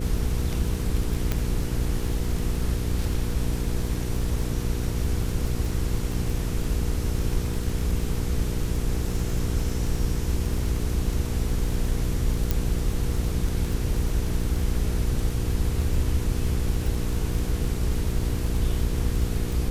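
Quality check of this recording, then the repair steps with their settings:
crackle 20/s -28 dBFS
hum 60 Hz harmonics 8 -29 dBFS
1.32 pop -10 dBFS
12.51 pop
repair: de-click; de-hum 60 Hz, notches 8

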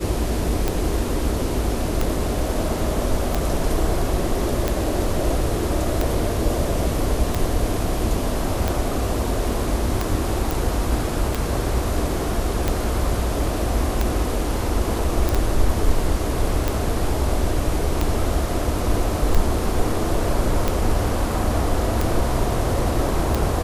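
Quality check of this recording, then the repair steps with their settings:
tick 45 rpm -7 dBFS
10.51 pop
15.29 pop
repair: de-click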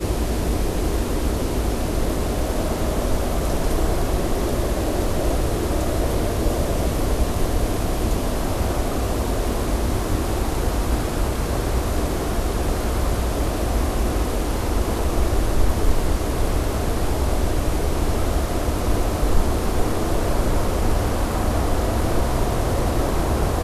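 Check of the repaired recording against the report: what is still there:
none

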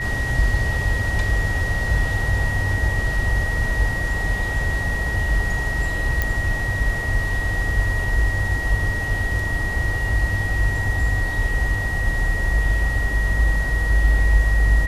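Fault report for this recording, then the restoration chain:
tone 1900 Hz -25 dBFS
6.22 pop -7 dBFS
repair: de-click; notch 1900 Hz, Q 30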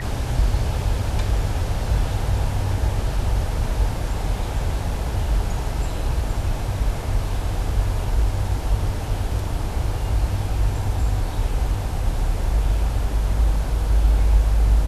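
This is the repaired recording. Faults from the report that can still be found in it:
none

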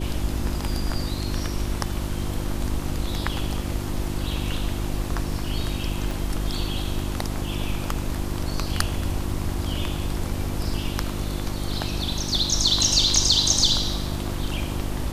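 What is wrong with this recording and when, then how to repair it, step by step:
hum 50 Hz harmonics 7 -30 dBFS
6.11 pop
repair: de-click; de-hum 50 Hz, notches 7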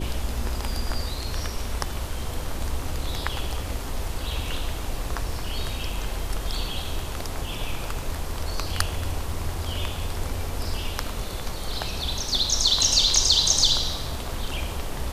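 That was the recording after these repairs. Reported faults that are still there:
6.11 pop

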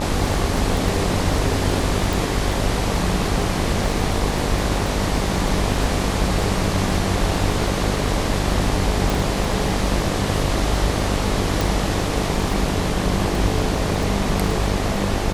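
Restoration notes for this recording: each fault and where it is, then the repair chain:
buzz 50 Hz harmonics 24 -25 dBFS
crackle 22/s -24 dBFS
2.13 pop
9.1 pop
11.61 pop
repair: de-click; de-hum 50 Hz, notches 24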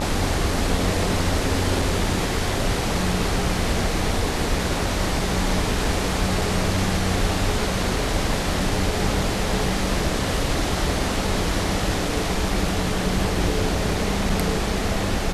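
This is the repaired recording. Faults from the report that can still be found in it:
2.13 pop

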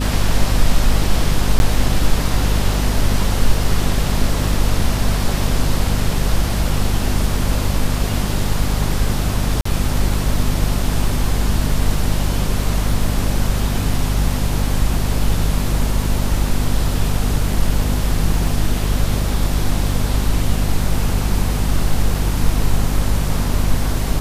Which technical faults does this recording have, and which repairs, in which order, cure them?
hum 50 Hz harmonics 5 -20 dBFS
1.59–1.6 gap 11 ms
9.61–9.65 gap 44 ms
18.47 gap 2.1 ms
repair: de-hum 50 Hz, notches 5; interpolate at 1.59, 11 ms; interpolate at 9.61, 44 ms; interpolate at 18.47, 2.1 ms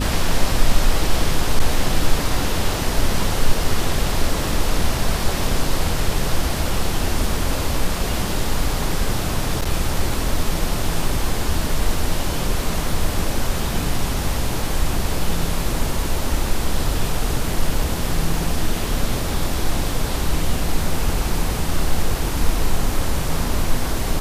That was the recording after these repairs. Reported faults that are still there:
none

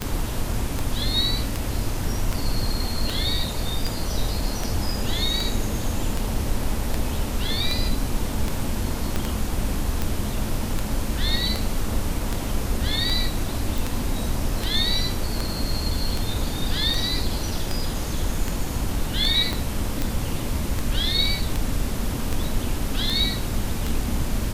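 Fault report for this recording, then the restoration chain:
tick 78 rpm -10 dBFS
9.16 pop -10 dBFS
13.78 pop
19.53 pop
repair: de-click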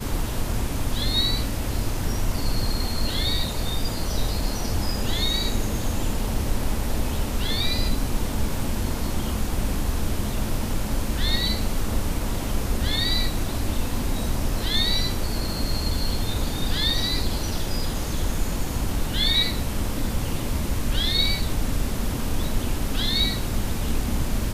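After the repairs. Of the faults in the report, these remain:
9.16 pop
19.53 pop

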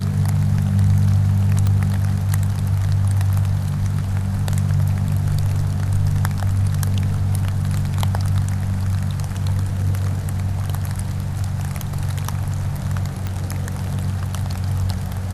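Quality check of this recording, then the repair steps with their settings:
1.67 pop -10 dBFS
13.27 pop -13 dBFS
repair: de-click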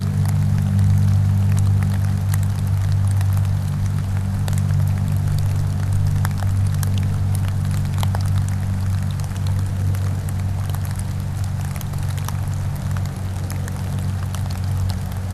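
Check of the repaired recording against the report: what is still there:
none

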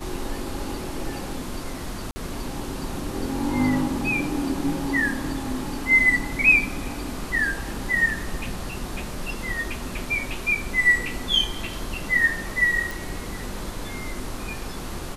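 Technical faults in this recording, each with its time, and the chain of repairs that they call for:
2.11–2.16 gap 50 ms
12.91 pop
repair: de-click; interpolate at 2.11, 50 ms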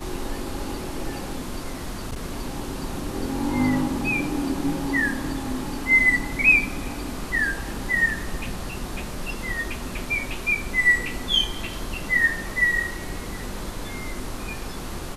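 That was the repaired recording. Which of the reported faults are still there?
none

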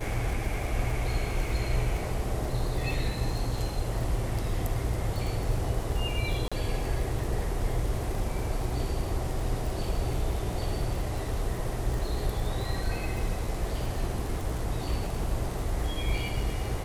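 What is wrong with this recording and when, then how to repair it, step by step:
crackle 47/s -33 dBFS
6.48–6.52 gap 36 ms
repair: de-click; interpolate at 6.48, 36 ms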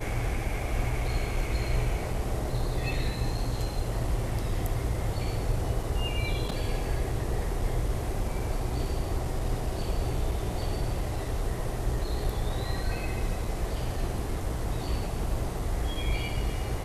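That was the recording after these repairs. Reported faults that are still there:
none

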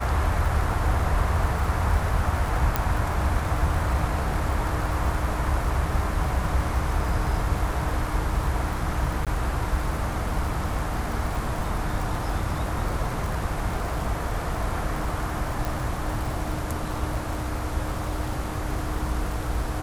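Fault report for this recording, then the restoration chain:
crackle 57/s -30 dBFS
2.76 pop -7 dBFS
9.25–9.27 gap 17 ms
15.65 pop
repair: de-click; interpolate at 9.25, 17 ms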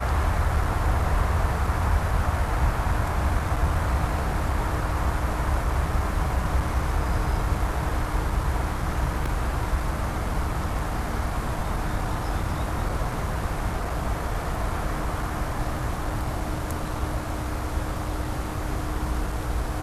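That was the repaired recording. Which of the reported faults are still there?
2.76 pop

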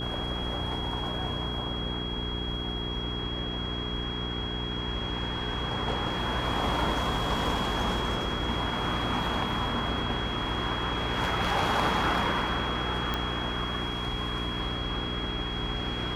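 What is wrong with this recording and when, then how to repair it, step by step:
hum 60 Hz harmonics 7 -35 dBFS
tone 3300 Hz -35 dBFS
13.14 pop -15 dBFS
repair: de-click; notch 3300 Hz, Q 30; de-hum 60 Hz, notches 7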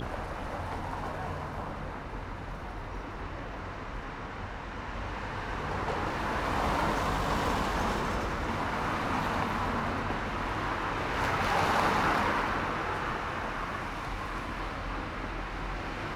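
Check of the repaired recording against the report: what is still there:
none

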